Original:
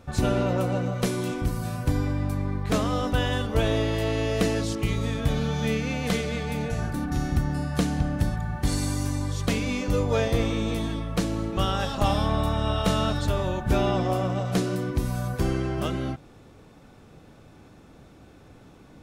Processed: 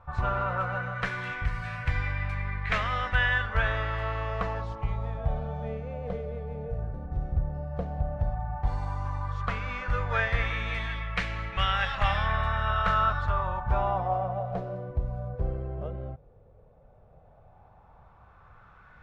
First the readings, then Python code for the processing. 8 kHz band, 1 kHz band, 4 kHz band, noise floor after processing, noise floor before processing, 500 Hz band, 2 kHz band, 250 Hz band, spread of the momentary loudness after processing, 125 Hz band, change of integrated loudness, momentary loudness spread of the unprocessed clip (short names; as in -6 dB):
under -20 dB, +1.5 dB, -5.0 dB, -56 dBFS, -51 dBFS, -7.5 dB, +4.5 dB, -15.0 dB, 9 LU, -5.0 dB, -3.5 dB, 5 LU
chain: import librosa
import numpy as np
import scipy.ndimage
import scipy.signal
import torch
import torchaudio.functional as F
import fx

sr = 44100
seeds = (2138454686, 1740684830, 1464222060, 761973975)

y = fx.tone_stack(x, sr, knobs='10-0-10')
y = fx.filter_lfo_lowpass(y, sr, shape='sine', hz=0.11, low_hz=490.0, high_hz=2100.0, q=3.0)
y = y * 10.0 ** (6.5 / 20.0)